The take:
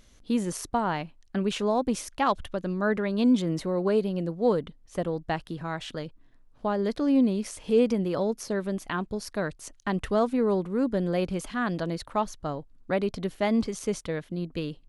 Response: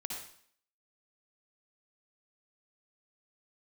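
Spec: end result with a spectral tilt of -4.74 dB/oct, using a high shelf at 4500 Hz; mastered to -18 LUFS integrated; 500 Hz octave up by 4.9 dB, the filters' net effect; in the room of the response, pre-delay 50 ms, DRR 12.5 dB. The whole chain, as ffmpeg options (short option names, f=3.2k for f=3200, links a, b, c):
-filter_complex "[0:a]equalizer=f=500:t=o:g=6,highshelf=f=4.5k:g=-7,asplit=2[a][b];[1:a]atrim=start_sample=2205,adelay=50[c];[b][c]afir=irnorm=-1:irlink=0,volume=-12.5dB[d];[a][d]amix=inputs=2:normalize=0,volume=7dB"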